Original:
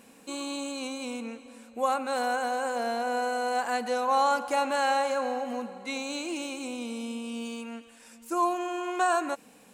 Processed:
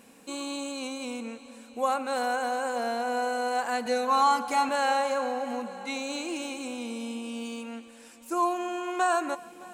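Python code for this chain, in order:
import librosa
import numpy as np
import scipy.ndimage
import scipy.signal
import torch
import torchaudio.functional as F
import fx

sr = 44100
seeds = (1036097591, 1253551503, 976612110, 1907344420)

p1 = fx.comb(x, sr, ms=4.5, depth=0.79, at=(3.85, 4.69))
y = p1 + fx.echo_heads(p1, sr, ms=308, heads='all three', feedback_pct=41, wet_db=-23.5, dry=0)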